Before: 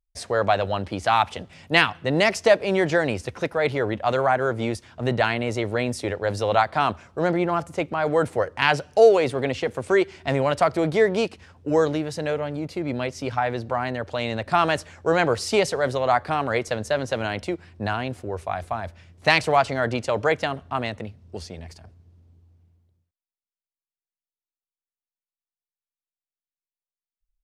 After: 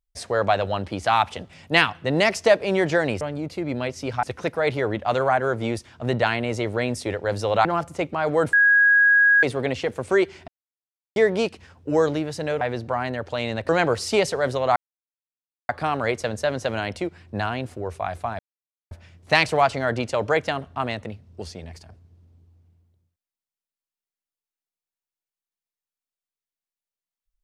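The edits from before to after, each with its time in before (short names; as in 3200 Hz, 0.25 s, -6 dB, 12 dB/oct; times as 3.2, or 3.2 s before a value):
6.63–7.44 cut
8.32–9.22 bleep 1650 Hz -12.5 dBFS
10.27–10.95 mute
12.4–13.42 move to 3.21
14.5–15.09 cut
16.16 insert silence 0.93 s
18.86 insert silence 0.52 s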